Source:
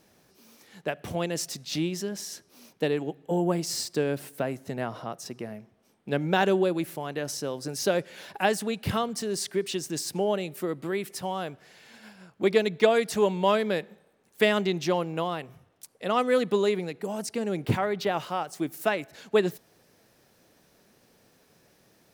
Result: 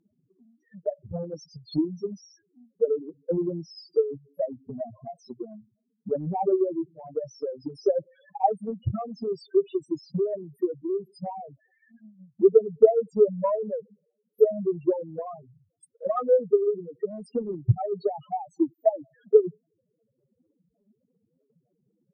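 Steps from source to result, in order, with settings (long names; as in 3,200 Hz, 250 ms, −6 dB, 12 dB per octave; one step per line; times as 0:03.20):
spectral peaks only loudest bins 2
transient designer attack +10 dB, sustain −2 dB
treble cut that deepens with the level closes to 1,900 Hz, closed at −16.5 dBFS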